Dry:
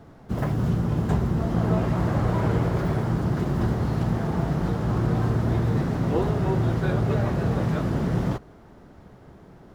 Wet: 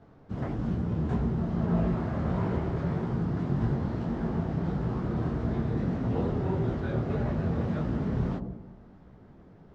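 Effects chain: air absorption 110 m; dark delay 92 ms, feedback 58%, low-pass 500 Hz, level -3 dB; detuned doubles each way 57 cents; gain -3.5 dB

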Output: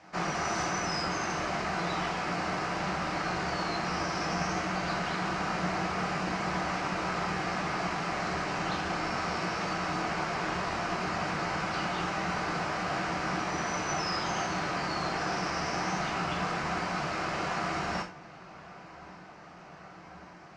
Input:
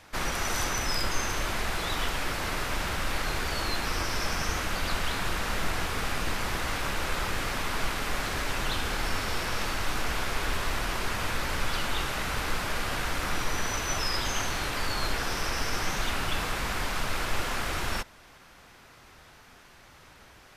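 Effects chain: speaker cabinet 100–6300 Hz, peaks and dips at 180 Hz +8 dB, 330 Hz +6 dB, 720 Hz +10 dB, 1200 Hz +4 dB, 3500 Hz -9 dB; darkening echo 1.137 s, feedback 83%, low-pass 3600 Hz, level -21 dB; non-linear reverb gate 0.12 s falling, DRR 2 dB; gain -4.5 dB

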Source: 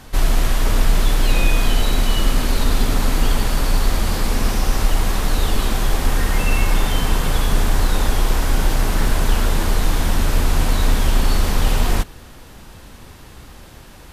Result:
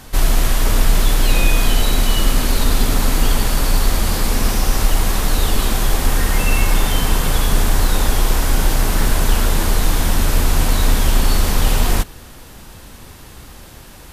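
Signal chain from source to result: high shelf 6600 Hz +6.5 dB; gain +1.5 dB

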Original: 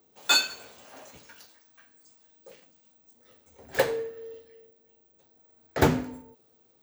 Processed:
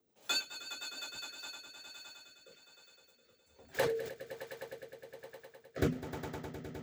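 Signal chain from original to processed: reverb removal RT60 1.7 s; swelling echo 0.103 s, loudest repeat 5, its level -14 dB; rotary speaker horn 6.7 Hz, later 1.2 Hz, at 0.83; 3.66–4.14 sustainer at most 51 dB/s; gain -7.5 dB

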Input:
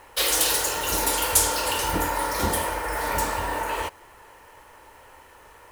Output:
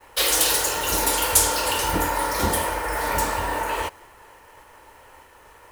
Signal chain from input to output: expander -47 dBFS; gain +2 dB

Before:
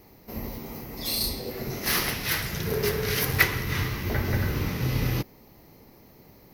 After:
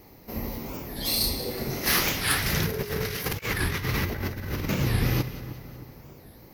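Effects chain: split-band echo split 1700 Hz, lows 0.312 s, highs 0.184 s, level -14 dB; reverb RT60 0.60 s, pre-delay 3 ms, DRR 13.5 dB; 2.46–4.75 negative-ratio compressor -30 dBFS, ratio -0.5; record warp 45 rpm, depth 250 cents; gain +2 dB

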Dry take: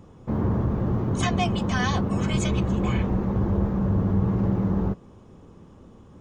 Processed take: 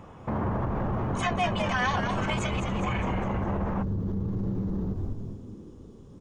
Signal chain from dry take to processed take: frequency-shifting echo 0.205 s, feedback 51%, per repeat -100 Hz, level -8 dB; limiter -22.5 dBFS, peak gain reduction 11.5 dB; band shelf 1300 Hz +8.5 dB 2.6 oct, from 3.82 s -8 dB

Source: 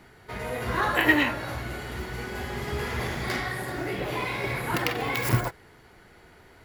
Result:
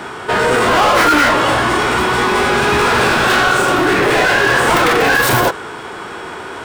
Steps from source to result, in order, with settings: overdrive pedal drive 33 dB, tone 5900 Hz, clips at -7 dBFS; formant shift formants -5 st; gain +2.5 dB

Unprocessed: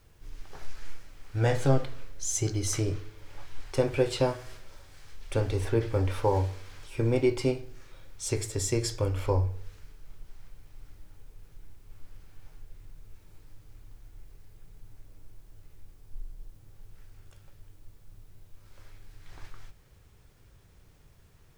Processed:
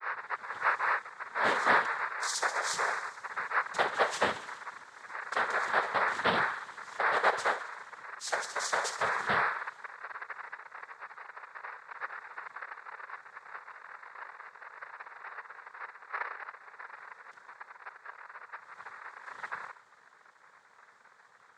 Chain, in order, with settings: tape start at the beginning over 0.65 s; notch 2400 Hz; ring modulator 1100 Hz; on a send: thinning echo 67 ms, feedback 76%, high-pass 890 Hz, level -13 dB; on the sum: noise vocoder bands 6

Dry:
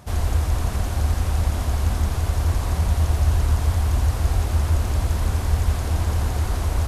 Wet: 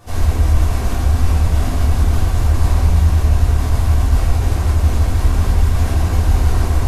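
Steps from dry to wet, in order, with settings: limiter -16 dBFS, peak gain reduction 8 dB; shoebox room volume 220 m³, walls mixed, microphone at 3.5 m; gain -4 dB

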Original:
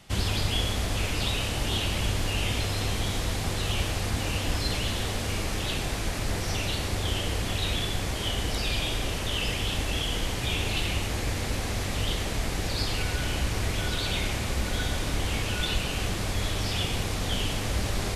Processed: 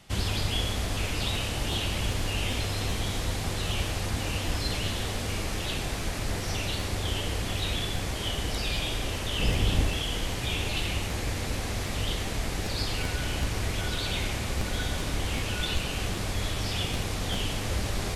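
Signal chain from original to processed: 9.39–9.89 low shelf 480 Hz +8 dB; crackling interface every 0.39 s, samples 512, repeat, from 0.94; gain -1.5 dB

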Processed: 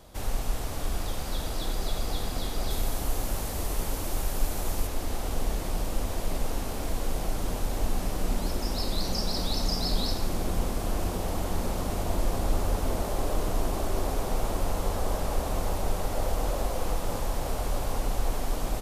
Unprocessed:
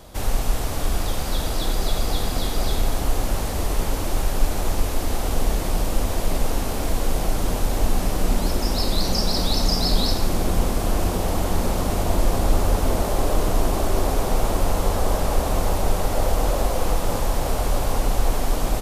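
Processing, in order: 2.7–4.87 high shelf 7800 Hz +7.5 dB; gain -7.5 dB

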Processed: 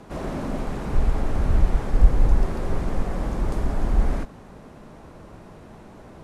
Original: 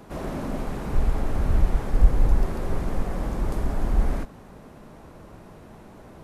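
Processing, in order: LPF 10000 Hz 12 dB/oct; gain +1.5 dB

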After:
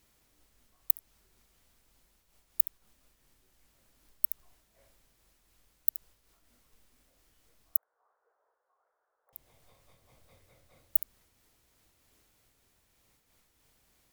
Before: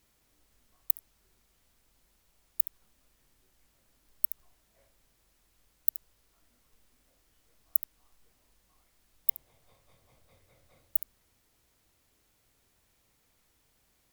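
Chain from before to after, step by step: 7.77–9.33 elliptic band-pass 450–1500 Hz; noise-modulated level, depth 55%; gain +3.5 dB

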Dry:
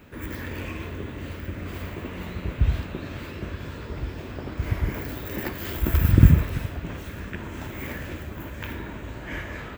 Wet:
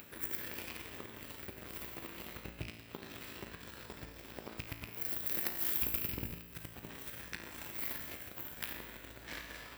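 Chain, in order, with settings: rattling part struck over -18 dBFS, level -20 dBFS; compressor 6:1, threshold -29 dBFS, peak gain reduction 20.5 dB; added harmonics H 7 -18 dB, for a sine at -15.5 dBFS; low shelf 240 Hz +8 dB; resonator 56 Hz, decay 1.1 s, harmonics all, mix 80%; upward compressor, threshold -42 dBFS; RIAA curve recording; notch 6600 Hz, Q 11; gain +5 dB

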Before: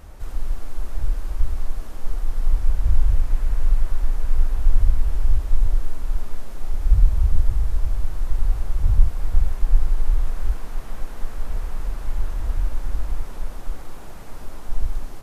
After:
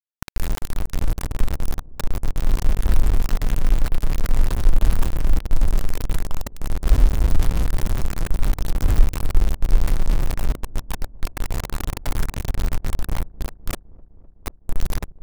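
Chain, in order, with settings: sample gate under -19 dBFS; dark delay 0.255 s, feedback 77%, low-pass 540 Hz, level -22 dB

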